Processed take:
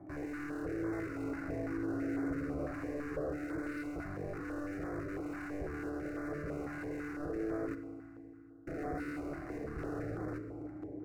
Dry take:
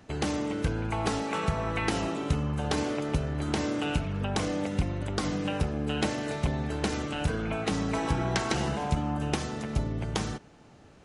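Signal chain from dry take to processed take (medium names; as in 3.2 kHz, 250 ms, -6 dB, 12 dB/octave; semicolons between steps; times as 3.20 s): 2.56–3.30 s: peaking EQ 530 Hz +12 dB 0.3 oct; overdrive pedal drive 35 dB, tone 1.2 kHz, clips at -12 dBFS; cascade formant filter u; hard clipper -35 dBFS, distortion -6 dB; static phaser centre 890 Hz, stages 6; 7.75–8.67 s: mute; FDN reverb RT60 2.7 s, low-frequency decay 1.45×, high-frequency decay 0.8×, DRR 8 dB; step-sequenced notch 6 Hz 460–2900 Hz; trim +3.5 dB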